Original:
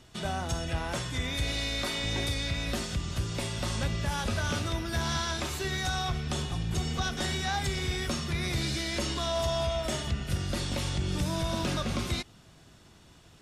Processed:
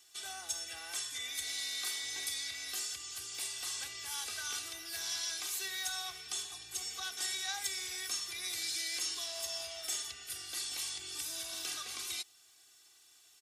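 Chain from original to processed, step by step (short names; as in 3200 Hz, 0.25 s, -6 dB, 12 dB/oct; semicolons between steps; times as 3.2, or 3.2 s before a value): differentiator; comb 2.6 ms, depth 96%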